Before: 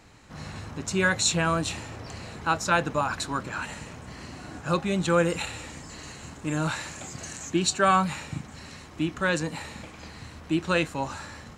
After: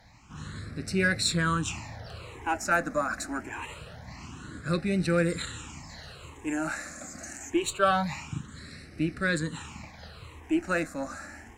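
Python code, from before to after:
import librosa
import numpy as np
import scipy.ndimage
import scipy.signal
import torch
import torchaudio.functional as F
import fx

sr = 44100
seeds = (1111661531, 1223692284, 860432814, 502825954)

y = fx.cheby_harmonics(x, sr, harmonics=(6, 8), levels_db=(-31, -27), full_scale_db=-8.0)
y = fx.phaser_stages(y, sr, stages=8, low_hz=120.0, high_hz=1000.0, hz=0.25, feedback_pct=5)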